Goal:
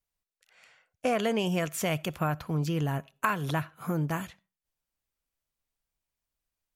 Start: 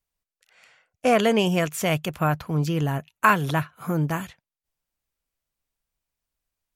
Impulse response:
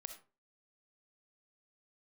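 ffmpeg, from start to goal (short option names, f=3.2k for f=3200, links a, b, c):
-filter_complex "[0:a]acompressor=threshold=-22dB:ratio=3,asplit=2[a][b];[1:a]atrim=start_sample=2205[c];[b][c]afir=irnorm=-1:irlink=0,volume=-11dB[d];[a][d]amix=inputs=2:normalize=0,volume=-4.5dB"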